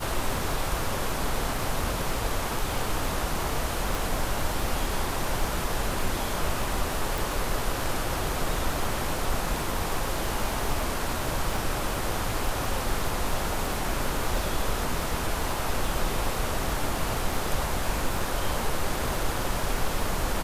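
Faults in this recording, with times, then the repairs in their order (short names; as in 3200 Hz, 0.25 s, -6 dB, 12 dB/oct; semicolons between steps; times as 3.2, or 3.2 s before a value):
crackle 25/s -30 dBFS
3.95 pop
7.18 pop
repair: de-click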